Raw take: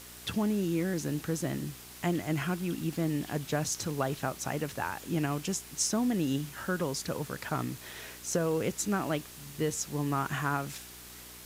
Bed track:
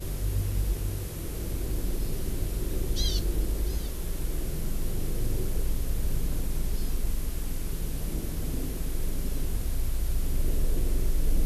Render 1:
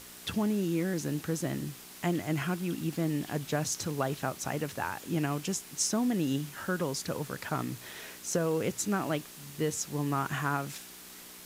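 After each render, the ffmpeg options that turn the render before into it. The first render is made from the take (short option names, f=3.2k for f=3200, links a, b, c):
-af "bandreject=f=60:t=h:w=4,bandreject=f=120:t=h:w=4"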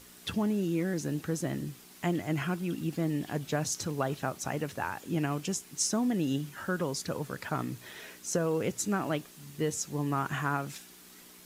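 -af "afftdn=nr=6:nf=-49"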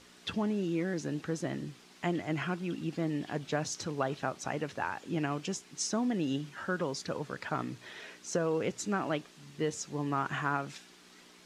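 -af "lowpass=5.5k,lowshelf=f=150:g=-8.5"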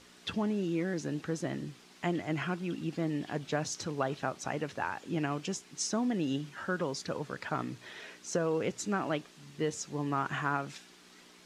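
-af anull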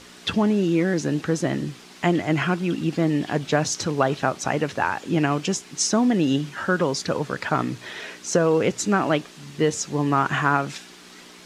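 -af "volume=11.5dB"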